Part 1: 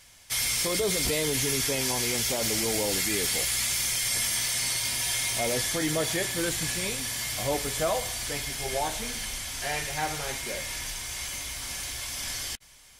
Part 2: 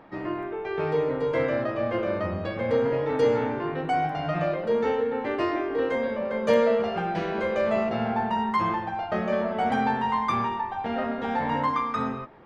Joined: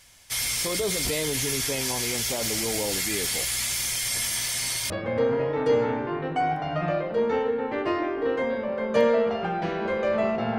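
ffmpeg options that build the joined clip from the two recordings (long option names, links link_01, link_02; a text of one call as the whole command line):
ffmpeg -i cue0.wav -i cue1.wav -filter_complex "[0:a]apad=whole_dur=10.58,atrim=end=10.58,atrim=end=4.902[link_01];[1:a]atrim=start=2.428:end=8.11[link_02];[link_01][link_02]acrossfade=duration=0.004:curve1=hsin:curve2=hsin" out.wav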